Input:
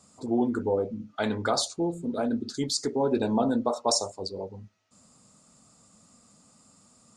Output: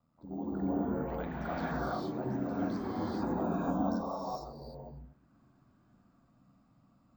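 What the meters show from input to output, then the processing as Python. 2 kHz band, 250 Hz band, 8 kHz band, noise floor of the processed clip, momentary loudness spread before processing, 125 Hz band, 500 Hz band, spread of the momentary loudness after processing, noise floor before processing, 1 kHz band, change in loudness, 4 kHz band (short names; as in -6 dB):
-5.5 dB, -5.0 dB, under -25 dB, -69 dBFS, 9 LU, -1.5 dB, -9.5 dB, 14 LU, -60 dBFS, -5.0 dB, -7.0 dB, -21.5 dB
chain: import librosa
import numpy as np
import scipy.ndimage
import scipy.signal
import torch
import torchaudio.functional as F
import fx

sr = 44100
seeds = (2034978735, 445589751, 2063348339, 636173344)

y = fx.peak_eq(x, sr, hz=410.0, db=-11.0, octaves=0.63)
y = y * np.sin(2.0 * np.pi * 41.0 * np.arange(len(y)) / sr)
y = y + 10.0 ** (-23.5 / 20.0) * np.pad(y, (int(239 * sr / 1000.0), 0))[:len(y)]
y = fx.echo_pitch(y, sr, ms=161, semitones=4, count=3, db_per_echo=-6.0)
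y = fx.spacing_loss(y, sr, db_at_10k=43)
y = fx.rev_gated(y, sr, seeds[0], gate_ms=480, shape='rising', drr_db=-7.5)
y = np.repeat(scipy.signal.resample_poly(y, 1, 2), 2)[:len(y)]
y = y * librosa.db_to_amplitude(-7.0)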